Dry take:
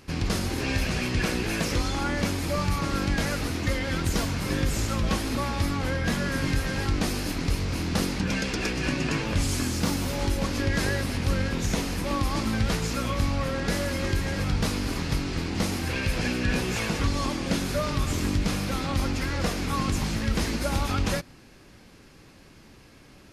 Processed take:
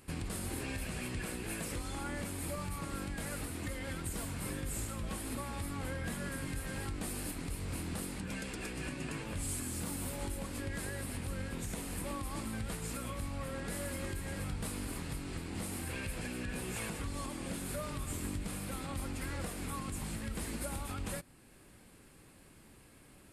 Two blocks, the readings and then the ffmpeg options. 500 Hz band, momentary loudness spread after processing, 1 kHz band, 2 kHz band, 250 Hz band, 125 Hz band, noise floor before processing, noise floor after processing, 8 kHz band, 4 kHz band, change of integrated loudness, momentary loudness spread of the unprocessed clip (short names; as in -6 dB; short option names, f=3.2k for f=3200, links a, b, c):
-12.5 dB, 2 LU, -13.0 dB, -13.0 dB, -13.0 dB, -13.0 dB, -51 dBFS, -59 dBFS, -6.5 dB, -15.0 dB, -12.5 dB, 2 LU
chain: -af "alimiter=limit=-22dB:level=0:latency=1:release=388,highshelf=f=7.1k:t=q:w=3:g=6.5,volume=-7.5dB"